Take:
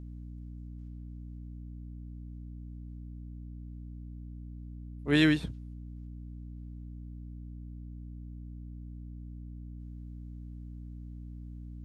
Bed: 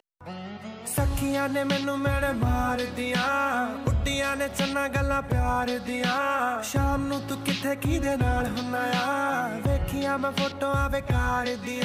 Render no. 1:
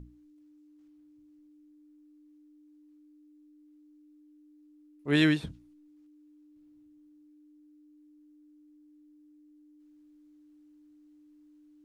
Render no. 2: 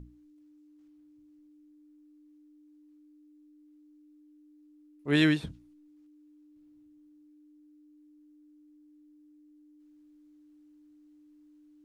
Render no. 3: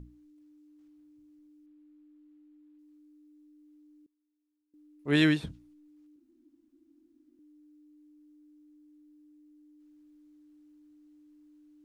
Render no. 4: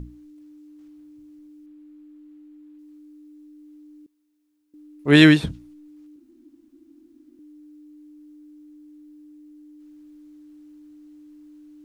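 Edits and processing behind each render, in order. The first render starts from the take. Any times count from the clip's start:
mains-hum notches 60/120/180/240 Hz
no processing that can be heard
0:01.66–0:02.79: linearly interpolated sample-rate reduction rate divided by 6×; 0:04.06–0:04.74: downward expander −46 dBFS; 0:06.16–0:07.39: fill with room tone
level +11.5 dB

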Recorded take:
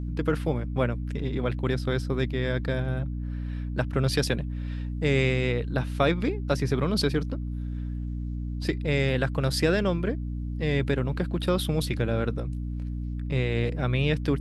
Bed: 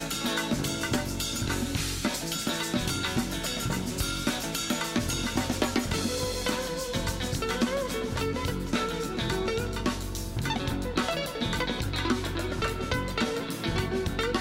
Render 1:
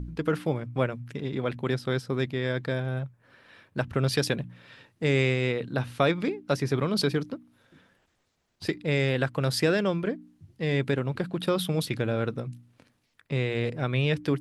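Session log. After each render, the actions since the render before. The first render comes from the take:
hum removal 60 Hz, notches 5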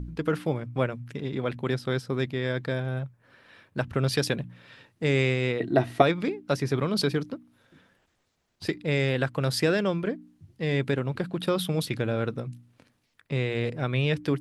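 0:05.60–0:06.02: hollow resonant body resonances 350/670/1,900 Hz, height 17 dB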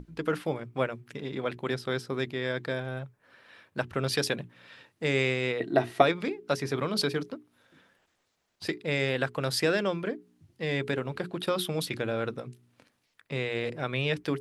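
low-shelf EQ 210 Hz −9.5 dB
mains-hum notches 60/120/180/240/300/360/420 Hz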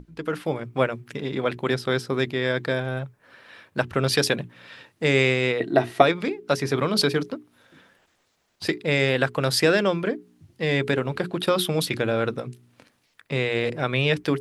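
automatic gain control gain up to 7 dB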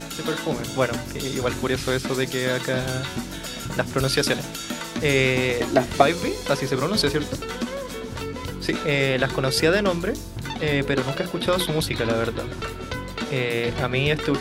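mix in bed −1.5 dB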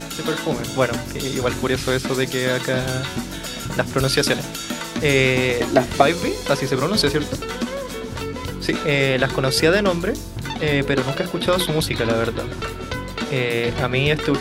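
level +3 dB
brickwall limiter −1 dBFS, peak gain reduction 2 dB

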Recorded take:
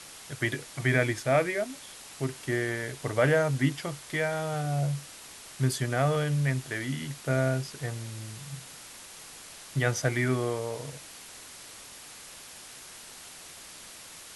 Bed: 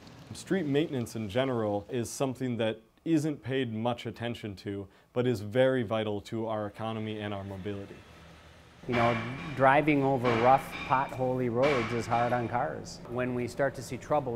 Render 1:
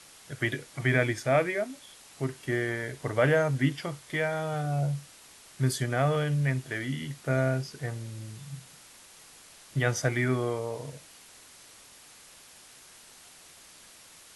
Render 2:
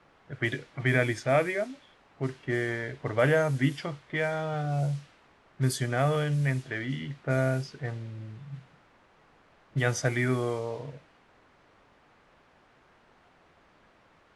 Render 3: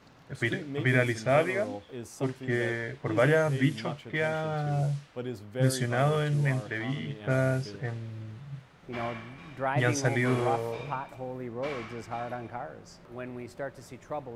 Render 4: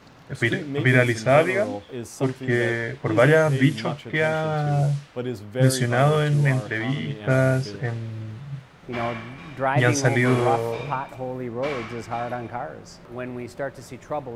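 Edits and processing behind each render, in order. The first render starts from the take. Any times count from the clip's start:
noise reduction from a noise print 6 dB
low-pass that shuts in the quiet parts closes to 1,300 Hz, open at −22 dBFS
mix in bed −8 dB
level +7 dB

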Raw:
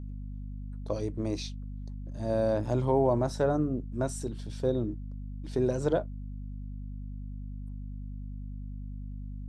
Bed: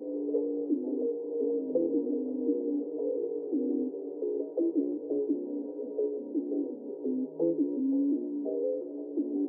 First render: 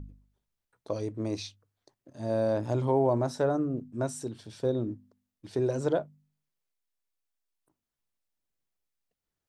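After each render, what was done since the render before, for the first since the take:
hum removal 50 Hz, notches 5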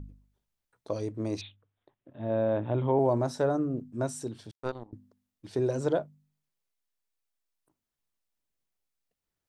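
0:01.41–0:02.99: Butterworth low-pass 3,700 Hz 96 dB per octave
0:04.51–0:04.93: power curve on the samples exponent 3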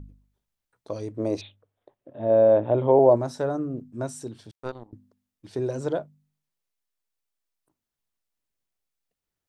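0:01.18–0:03.16: parametric band 550 Hz +11.5 dB 1.3 octaves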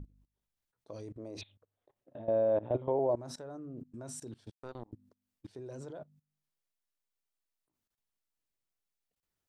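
output level in coarse steps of 22 dB
brickwall limiter −21.5 dBFS, peak gain reduction 8 dB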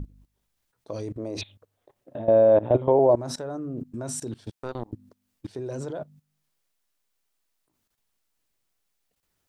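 level +11.5 dB

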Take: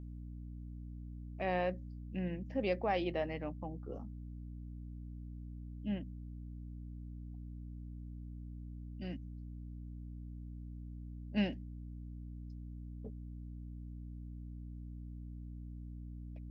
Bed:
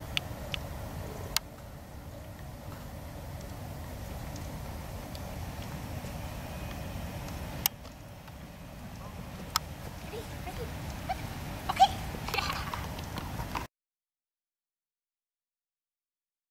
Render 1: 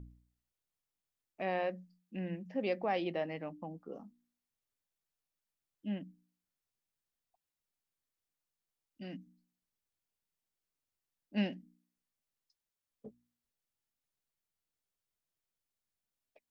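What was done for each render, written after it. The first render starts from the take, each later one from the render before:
hum removal 60 Hz, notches 5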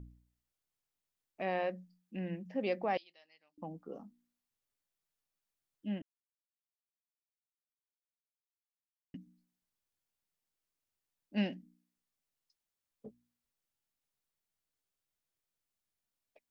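0:02.97–0:03.58: resonant band-pass 4,700 Hz, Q 4.7
0:06.02–0:09.14: silence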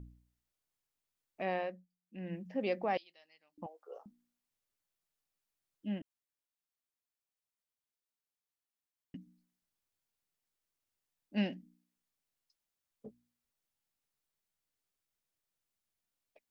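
0:01.52–0:02.38: duck −21 dB, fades 0.37 s
0:03.66–0:04.06: Butterworth high-pass 440 Hz 48 dB per octave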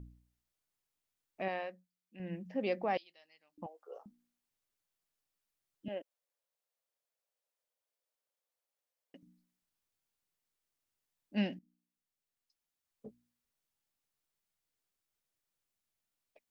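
0:01.48–0:02.20: low-shelf EQ 500 Hz −8.5 dB
0:05.88–0:09.23: high-pass with resonance 530 Hz, resonance Q 4.3
0:11.59–0:13.06: fade in, from −12.5 dB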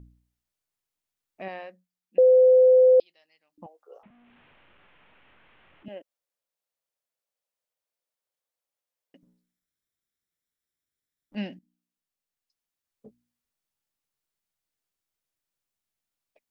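0:02.18–0:03.00: beep over 511 Hz −12.5 dBFS
0:04.03–0:05.86: linear delta modulator 16 kbit/s, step −52 dBFS
0:09.23–0:11.35: lower of the sound and its delayed copy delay 0.54 ms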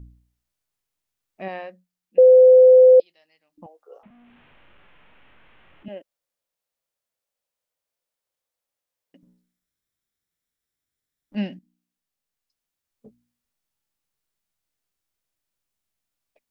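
harmonic and percussive parts rebalanced harmonic +5 dB
low-shelf EQ 140 Hz +4.5 dB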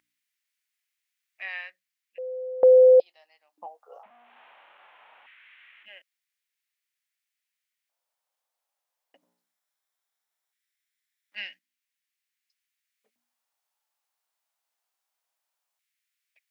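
auto-filter high-pass square 0.19 Hz 780–2,000 Hz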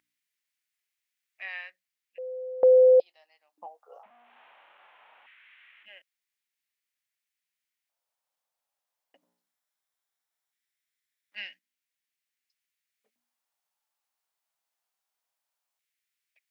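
level −2.5 dB

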